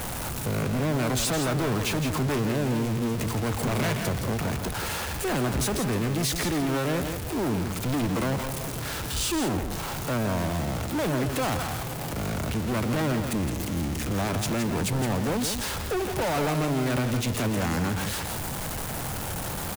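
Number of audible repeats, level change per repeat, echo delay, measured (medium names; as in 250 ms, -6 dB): 1, no regular repeats, 166 ms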